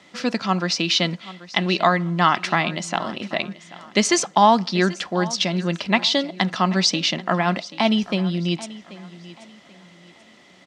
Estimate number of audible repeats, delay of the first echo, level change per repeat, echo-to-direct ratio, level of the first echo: 2, 0.785 s, -10.0 dB, -17.5 dB, -18.0 dB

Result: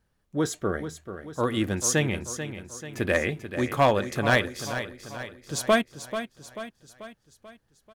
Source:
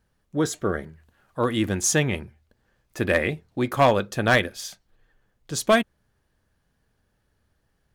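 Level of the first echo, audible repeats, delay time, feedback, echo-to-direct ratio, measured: -10.5 dB, 5, 0.438 s, 52%, -9.0 dB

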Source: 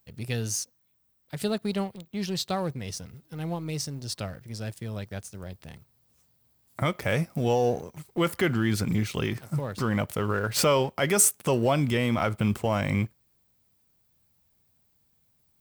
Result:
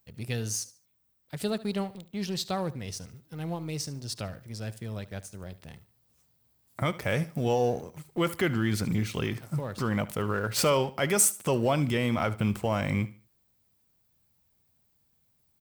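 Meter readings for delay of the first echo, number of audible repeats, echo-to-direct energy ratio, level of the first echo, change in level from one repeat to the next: 73 ms, 2, -17.0 dB, -17.5 dB, -11.0 dB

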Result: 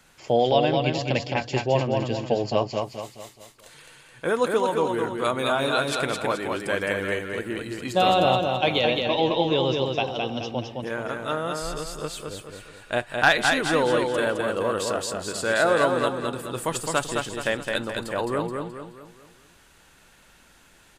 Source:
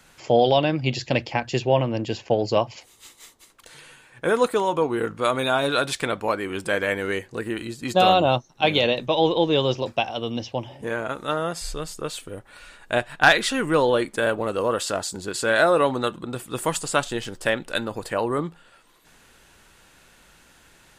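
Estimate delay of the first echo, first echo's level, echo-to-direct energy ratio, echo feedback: 0.213 s, -4.0 dB, -3.0 dB, 43%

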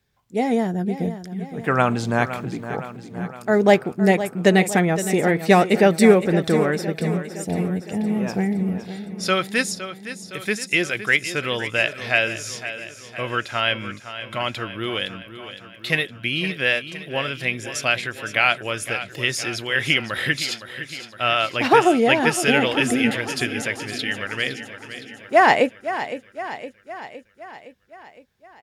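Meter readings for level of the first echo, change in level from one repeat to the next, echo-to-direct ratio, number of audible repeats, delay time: -12.0 dB, -4.5 dB, -10.0 dB, 6, 0.513 s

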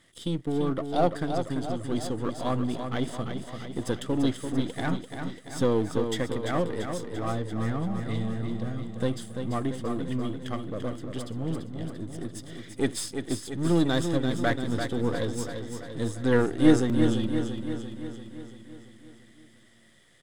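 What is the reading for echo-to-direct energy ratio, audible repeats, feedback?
-5.0 dB, 7, 59%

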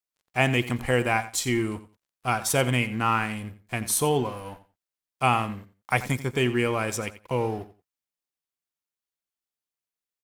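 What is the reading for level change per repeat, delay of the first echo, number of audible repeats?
-14.5 dB, 88 ms, 2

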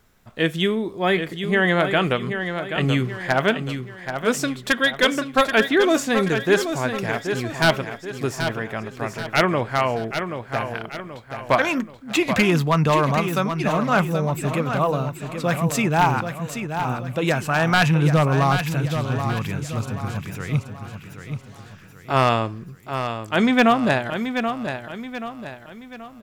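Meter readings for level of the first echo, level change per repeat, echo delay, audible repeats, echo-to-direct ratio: -8.0 dB, -7.5 dB, 0.78 s, 4, -7.0 dB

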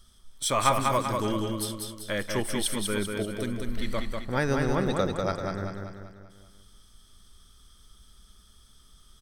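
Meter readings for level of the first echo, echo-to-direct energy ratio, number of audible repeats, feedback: -4.0 dB, -3.0 dB, 6, 50%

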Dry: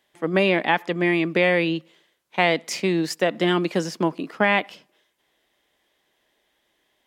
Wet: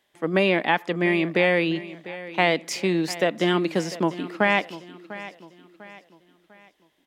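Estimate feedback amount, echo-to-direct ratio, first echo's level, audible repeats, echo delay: 40%, -15.5 dB, -16.0 dB, 3, 0.698 s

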